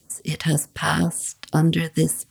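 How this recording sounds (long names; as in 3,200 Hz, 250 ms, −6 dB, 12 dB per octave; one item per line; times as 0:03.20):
phaser sweep stages 2, 2 Hz, lowest notch 260–3,500 Hz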